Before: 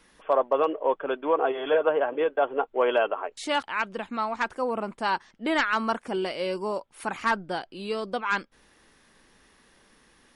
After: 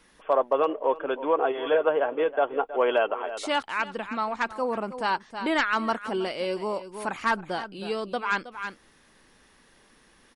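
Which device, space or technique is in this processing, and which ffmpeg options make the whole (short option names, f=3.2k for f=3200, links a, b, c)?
ducked delay: -filter_complex "[0:a]asplit=3[a][b][c];[b]adelay=319,volume=-8dB[d];[c]apad=whole_len=470577[e];[d][e]sidechaincompress=threshold=-34dB:ratio=6:attack=12:release=220[f];[a][f]amix=inputs=2:normalize=0"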